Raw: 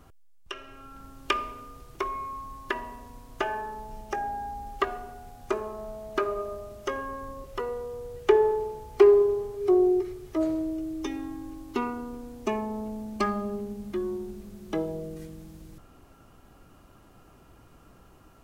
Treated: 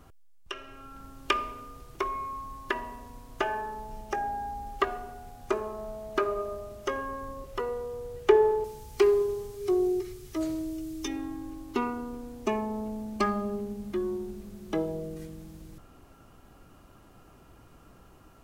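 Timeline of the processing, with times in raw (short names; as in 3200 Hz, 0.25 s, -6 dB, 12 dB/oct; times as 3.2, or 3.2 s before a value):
8.64–11.08 EQ curve 180 Hz 0 dB, 600 Hz -8 dB, 5700 Hz +7 dB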